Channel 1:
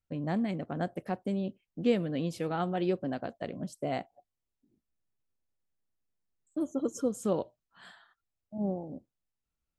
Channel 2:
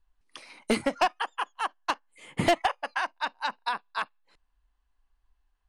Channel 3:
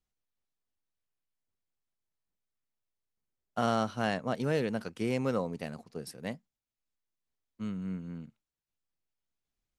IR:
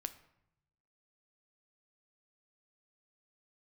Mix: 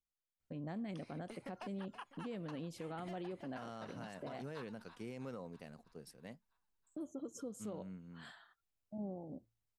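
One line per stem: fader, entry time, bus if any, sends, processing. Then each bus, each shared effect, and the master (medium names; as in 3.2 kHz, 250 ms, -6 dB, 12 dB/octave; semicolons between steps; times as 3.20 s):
-2.5 dB, 0.40 s, bus A, no send, no echo send, none
-9.5 dB, 0.60 s, bus A, no send, echo send -18 dB, compression 12:1, threshold -31 dBFS, peak gain reduction 13 dB
-12.5 dB, 0.00 s, no bus, no send, no echo send, none
bus A: 0.0 dB, de-hum 56.96 Hz, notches 2; compression 2:1, threshold -46 dBFS, peak gain reduction 12.5 dB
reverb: none
echo: feedback delay 325 ms, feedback 57%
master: peak limiter -36.5 dBFS, peak gain reduction 10.5 dB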